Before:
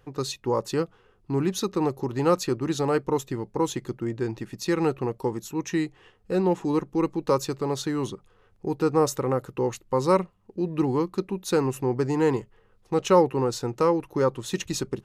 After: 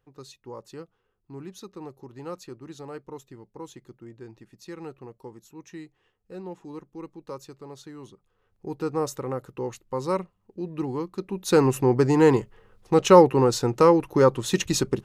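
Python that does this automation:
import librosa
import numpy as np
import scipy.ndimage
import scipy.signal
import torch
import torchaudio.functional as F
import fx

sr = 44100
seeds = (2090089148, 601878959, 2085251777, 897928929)

y = fx.gain(x, sr, db=fx.line((8.14, -15.0), (8.72, -5.5), (11.16, -5.5), (11.59, 5.0)))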